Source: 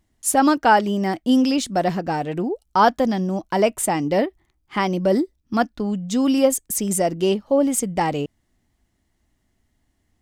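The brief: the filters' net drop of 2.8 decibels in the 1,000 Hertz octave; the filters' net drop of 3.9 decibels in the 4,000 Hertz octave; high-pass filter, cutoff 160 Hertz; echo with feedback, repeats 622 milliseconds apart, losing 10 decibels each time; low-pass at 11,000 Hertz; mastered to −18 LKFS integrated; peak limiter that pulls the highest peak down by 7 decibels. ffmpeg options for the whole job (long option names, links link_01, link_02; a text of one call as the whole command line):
ffmpeg -i in.wav -af "highpass=160,lowpass=11000,equalizer=frequency=1000:width_type=o:gain=-3.5,equalizer=frequency=4000:width_type=o:gain=-5.5,alimiter=limit=-12.5dB:level=0:latency=1,aecho=1:1:622|1244|1866|2488:0.316|0.101|0.0324|0.0104,volume=5dB" out.wav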